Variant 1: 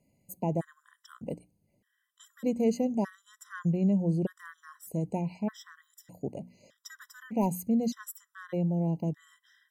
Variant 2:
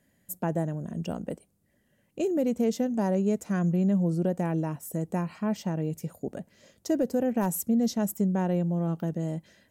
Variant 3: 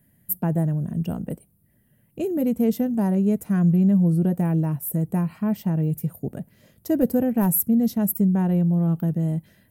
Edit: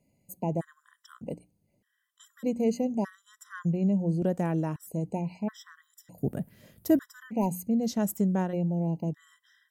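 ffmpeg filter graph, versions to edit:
-filter_complex "[1:a]asplit=2[a][b];[0:a]asplit=4[c][d][e][f];[c]atrim=end=4.222[g];[a]atrim=start=4.218:end=4.762[h];[d]atrim=start=4.758:end=6.182[i];[2:a]atrim=start=6.178:end=6.992[j];[e]atrim=start=6.988:end=7.95[k];[b]atrim=start=7.79:end=8.57[l];[f]atrim=start=8.41[m];[g][h]acrossfade=d=0.004:c1=hsin:c2=hsin[n];[n][i]acrossfade=d=0.004:c1=hsin:c2=hsin[o];[o][j]acrossfade=d=0.004:c1=hsin:c2=hsin[p];[p][k]acrossfade=d=0.004:c1=hsin:c2=hsin[q];[q][l]acrossfade=d=0.16:c1=tri:c2=tri[r];[r][m]acrossfade=d=0.16:c1=tri:c2=tri"

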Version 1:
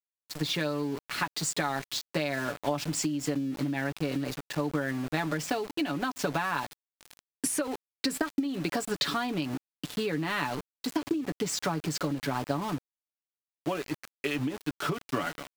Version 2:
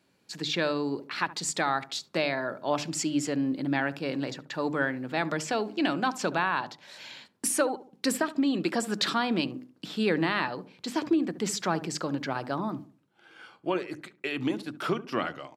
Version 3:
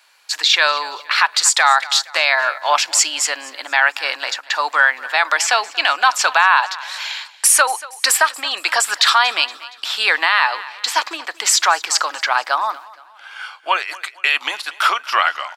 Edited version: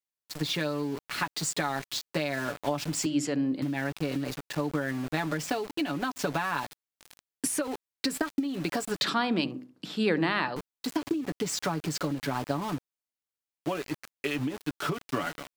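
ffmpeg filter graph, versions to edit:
-filter_complex "[1:a]asplit=2[a][b];[0:a]asplit=3[c][d][e];[c]atrim=end=3.062[f];[a]atrim=start=3.058:end=3.622[g];[d]atrim=start=3.618:end=9.042[h];[b]atrim=start=9.038:end=10.562[i];[e]atrim=start=10.558[j];[f][g]acrossfade=d=0.004:c1=hsin:c2=hsin[k];[k][h]acrossfade=d=0.004:c1=hsin:c2=hsin[l];[l][i]acrossfade=d=0.004:c1=hsin:c2=hsin[m];[m][j]acrossfade=d=0.004:c1=hsin:c2=hsin"

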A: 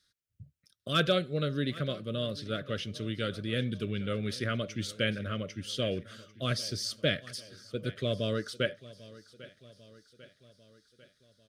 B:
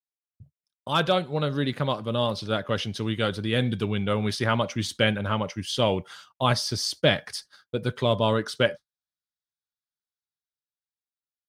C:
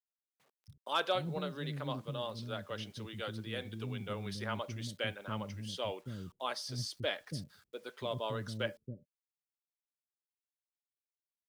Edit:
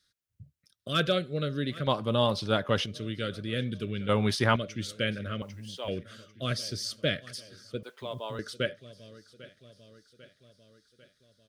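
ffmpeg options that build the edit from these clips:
-filter_complex "[1:a]asplit=2[a][b];[2:a]asplit=2[c][d];[0:a]asplit=5[e][f][g][h][i];[e]atrim=end=1.872[j];[a]atrim=start=1.868:end=2.862[k];[f]atrim=start=2.858:end=4.092[l];[b]atrim=start=4.088:end=4.562[m];[g]atrim=start=4.558:end=5.422[n];[c]atrim=start=5.418:end=5.882[o];[h]atrim=start=5.878:end=7.832[p];[d]atrim=start=7.828:end=8.392[q];[i]atrim=start=8.388[r];[j][k]acrossfade=d=0.004:c1=hsin:c2=hsin[s];[s][l]acrossfade=d=0.004:c1=hsin:c2=hsin[t];[t][m]acrossfade=d=0.004:c1=hsin:c2=hsin[u];[u][n]acrossfade=d=0.004:c1=hsin:c2=hsin[v];[v][o]acrossfade=d=0.004:c1=hsin:c2=hsin[w];[w][p]acrossfade=d=0.004:c1=hsin:c2=hsin[x];[x][q]acrossfade=d=0.004:c1=hsin:c2=hsin[y];[y][r]acrossfade=d=0.004:c1=hsin:c2=hsin"

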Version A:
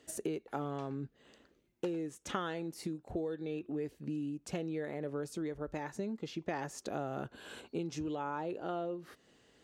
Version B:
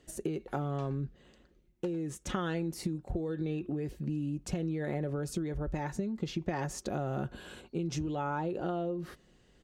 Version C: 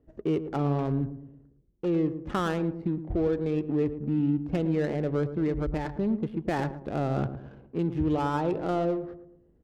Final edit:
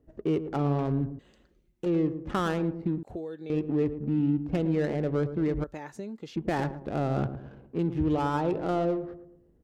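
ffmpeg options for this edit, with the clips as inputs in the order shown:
-filter_complex "[0:a]asplit=2[a][b];[2:a]asplit=4[c][d][e][f];[c]atrim=end=1.192[g];[1:a]atrim=start=1.188:end=1.862[h];[d]atrim=start=1.858:end=3.032[i];[a]atrim=start=3.028:end=3.502[j];[e]atrim=start=3.498:end=5.642[k];[b]atrim=start=5.638:end=6.362[l];[f]atrim=start=6.358[m];[g][h]acrossfade=d=0.004:c1=hsin:c2=hsin[n];[n][i]acrossfade=d=0.004:c1=hsin:c2=hsin[o];[o][j]acrossfade=d=0.004:c1=hsin:c2=hsin[p];[p][k]acrossfade=d=0.004:c1=hsin:c2=hsin[q];[q][l]acrossfade=d=0.004:c1=hsin:c2=hsin[r];[r][m]acrossfade=d=0.004:c1=hsin:c2=hsin"

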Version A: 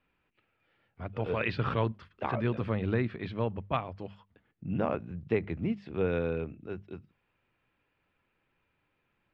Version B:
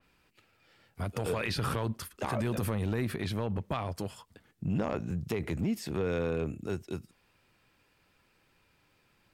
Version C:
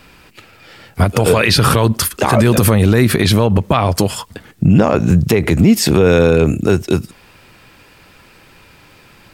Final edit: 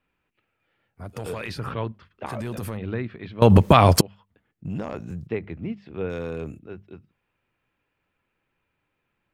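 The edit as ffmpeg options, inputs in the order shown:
-filter_complex "[1:a]asplit=4[a][b][c][d];[0:a]asplit=6[e][f][g][h][i][j];[e]atrim=end=1.19[k];[a]atrim=start=0.95:end=1.72[l];[f]atrim=start=1.48:end=2.262[m];[b]atrim=start=2.258:end=2.772[n];[g]atrim=start=2.768:end=3.422[o];[2:a]atrim=start=3.418:end=4.012[p];[h]atrim=start=4.008:end=4.652[q];[c]atrim=start=4.648:end=5.272[r];[i]atrim=start=5.268:end=6.102[s];[d]atrim=start=6.098:end=6.592[t];[j]atrim=start=6.588[u];[k][l]acrossfade=d=0.24:c1=tri:c2=tri[v];[v][m]acrossfade=d=0.24:c1=tri:c2=tri[w];[w][n]acrossfade=d=0.004:c1=hsin:c2=hsin[x];[x][o]acrossfade=d=0.004:c1=hsin:c2=hsin[y];[y][p]acrossfade=d=0.004:c1=hsin:c2=hsin[z];[z][q]acrossfade=d=0.004:c1=hsin:c2=hsin[aa];[aa][r]acrossfade=d=0.004:c1=hsin:c2=hsin[ab];[ab][s]acrossfade=d=0.004:c1=hsin:c2=hsin[ac];[ac][t]acrossfade=d=0.004:c1=hsin:c2=hsin[ad];[ad][u]acrossfade=d=0.004:c1=hsin:c2=hsin"

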